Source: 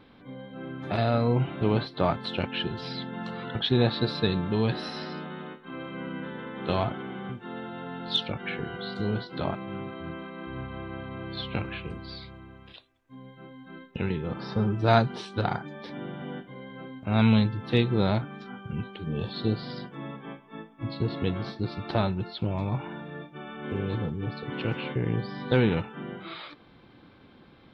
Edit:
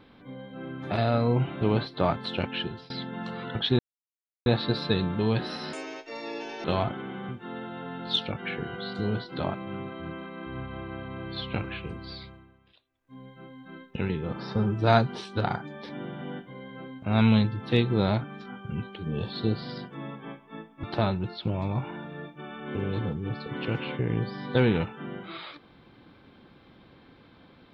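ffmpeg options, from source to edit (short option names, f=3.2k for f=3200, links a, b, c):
-filter_complex "[0:a]asplit=8[a][b][c][d][e][f][g][h];[a]atrim=end=2.9,asetpts=PTS-STARTPTS,afade=t=out:st=2.46:d=0.44:c=qsin:silence=0.0668344[i];[b]atrim=start=2.9:end=3.79,asetpts=PTS-STARTPTS,afade=t=in:d=0.004:c=hsin:silence=0.0668344,afade=t=out:st=0.886:d=0.004:c=hsin,apad=pad_dur=0.67[j];[c]atrim=start=3.79:end=5.064,asetpts=PTS-STARTPTS,afade=t=in:d=0.004:c=hsin[k];[d]atrim=start=5.06:end=6.65,asetpts=PTS-STARTPTS,asetrate=76734,aresample=44100,atrim=end_sample=40298,asetpts=PTS-STARTPTS[l];[e]atrim=start=6.646:end=12.67,asetpts=PTS-STARTPTS,afade=t=out:st=5.614:d=0.41:c=qua:silence=0.211349[m];[f]atrim=start=12.67:end=12.76,asetpts=PTS-STARTPTS,volume=-13.5dB[n];[g]atrim=start=12.76:end=20.842,asetpts=PTS-STARTPTS,afade=t=in:d=0.41:c=qua:silence=0.211349[o];[h]atrim=start=21.798[p];[i][j][k]concat=n=3:v=0:a=1[q];[q][l]acrossfade=d=0.004:c1=hsin:c2=hsin[r];[m][n][o]concat=n=3:v=0:a=1[s];[r][s]acrossfade=d=0.004:c1=hsin:c2=hsin[t];[t][p]acrossfade=d=0.004:c1=hsin:c2=hsin"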